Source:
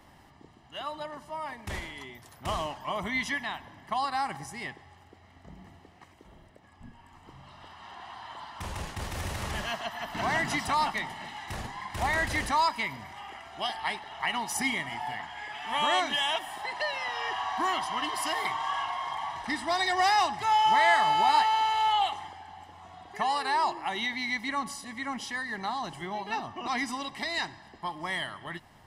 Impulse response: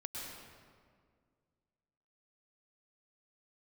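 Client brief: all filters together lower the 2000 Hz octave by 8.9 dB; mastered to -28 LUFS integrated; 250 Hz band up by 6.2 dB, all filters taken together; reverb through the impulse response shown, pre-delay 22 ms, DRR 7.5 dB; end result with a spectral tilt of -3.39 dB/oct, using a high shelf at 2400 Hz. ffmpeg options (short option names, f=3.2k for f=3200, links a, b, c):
-filter_complex "[0:a]equalizer=f=250:t=o:g=7.5,equalizer=f=2k:t=o:g=-8,highshelf=f=2.4k:g=-5,asplit=2[a][b];[1:a]atrim=start_sample=2205,adelay=22[c];[b][c]afir=irnorm=-1:irlink=0,volume=-7dB[d];[a][d]amix=inputs=2:normalize=0,volume=3dB"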